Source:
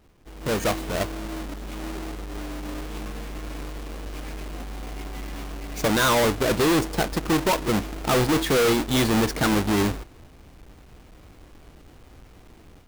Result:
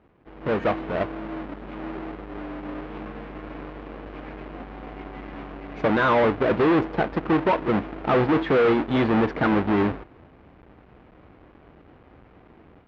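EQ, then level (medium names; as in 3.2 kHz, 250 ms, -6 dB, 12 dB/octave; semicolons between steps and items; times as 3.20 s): high-pass 160 Hz 6 dB/octave; Bessel low-pass 1.8 kHz, order 4; +2.5 dB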